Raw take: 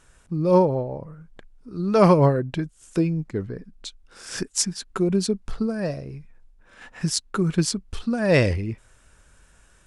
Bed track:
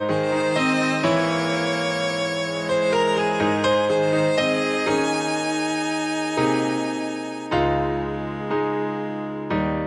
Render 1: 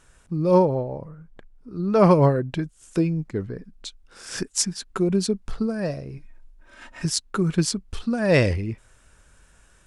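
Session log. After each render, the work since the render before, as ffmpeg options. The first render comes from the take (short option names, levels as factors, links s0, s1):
-filter_complex "[0:a]asettb=1/sr,asplit=3[s0][s1][s2];[s0]atrim=end=1.084[s3];[s1]atrim=start=1.08:end=2.11,asetpts=PTS-STARTPTS,afade=t=in:d=0.004:c=qsin,afade=t=out:st=1.026:d=0.004:c=qsin,highshelf=f=2500:g=-7.5[s4];[s2]atrim=start=2.106[s5];[s3][s4]acrossfade=d=0.004:c1=hsin:c2=qsin[s6];[s6][s5]acrossfade=d=0.004:c1=qsin:c2=hsin,asettb=1/sr,asplit=3[s7][s8][s9];[s7]atrim=end=6.174[s10];[s8]atrim=start=6.17:end=7.05,asetpts=PTS-STARTPTS,afade=t=in:d=0.004:c=qsin,afade=t=out:st=0.876:d=0.004:c=qsin,aecho=1:1:3.2:0.73,atrim=end_sample=38808[s11];[s9]atrim=start=7.046[s12];[s10][s11]acrossfade=d=0.004:c1=hsin:c2=qsin[s13];[s13][s12]acrossfade=d=0.004:c1=qsin:c2=hsin"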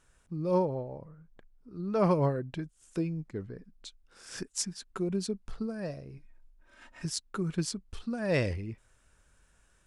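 -af "volume=0.316"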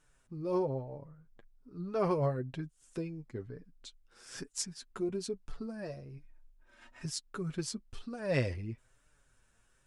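-af "flanger=delay=6.5:depth=2.4:regen=19:speed=1.1:shape=triangular"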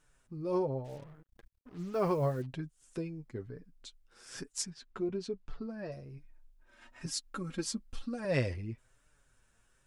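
-filter_complex "[0:a]asplit=3[s0][s1][s2];[s0]afade=t=out:st=0.84:d=0.02[s3];[s1]acrusher=bits=8:mix=0:aa=0.5,afade=t=in:st=0.84:d=0.02,afade=t=out:st=2.45:d=0.02[s4];[s2]afade=t=in:st=2.45:d=0.02[s5];[s3][s4][s5]amix=inputs=3:normalize=0,asettb=1/sr,asplit=3[s6][s7][s8];[s6]atrim=end=4.704[s9];[s7]atrim=start=4.7:end=5.92,asetpts=PTS-STARTPTS,afade=t=in:d=0.004:c=qsin,afade=t=out:st=1.216:d=0.004:c=qsin,lowpass=4300[s10];[s8]atrim=start=5.916[s11];[s9][s10]acrossfade=d=0.004:c1=hsin:c2=qsin[s12];[s12][s11]acrossfade=d=0.004:c1=qsin:c2=hsin,asettb=1/sr,asplit=3[s13][s14][s15];[s13]atrim=end=7.064[s16];[s14]atrim=start=7.06:end=8.25,asetpts=PTS-STARTPTS,afade=t=in:d=0.004:c=qsin,afade=t=out:st=1.186:d=0.004:c=qsin,aecho=1:1:3.7:0.83,atrim=end_sample=52479[s17];[s15]atrim=start=8.246[s18];[s16][s17]acrossfade=d=0.004:c1=hsin:c2=qsin[s19];[s19][s18]acrossfade=d=0.004:c1=qsin:c2=hsin"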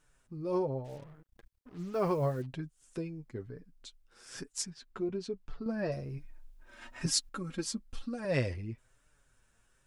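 -filter_complex "[0:a]asplit=3[s0][s1][s2];[s0]atrim=end=5.662[s3];[s1]atrim=start=5.658:end=7.292,asetpts=PTS-STARTPTS,volume=2.37[s4];[s2]atrim=start=7.288[s5];[s3][s4]acrossfade=d=0.004:c1=hsin:c2=hsin[s6];[s6][s5]acrossfade=d=0.004:c1=hsin:c2=hsin"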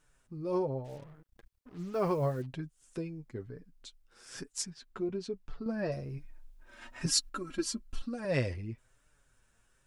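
-filter_complex "[0:a]asettb=1/sr,asplit=3[s0][s1][s2];[s0]atrim=end=7.094[s3];[s1]atrim=start=7.09:end=8.02,asetpts=PTS-STARTPTS,afade=t=in:d=0.004:c=qsin,afade=t=out:st=0.926:d=0.004:c=qsin,aecho=1:1:3:0.65,atrim=end_sample=41013[s4];[s2]atrim=start=8.016[s5];[s3][s4]acrossfade=d=0.004:c1=hsin:c2=qsin[s6];[s6][s5]acrossfade=d=0.004:c1=qsin:c2=hsin"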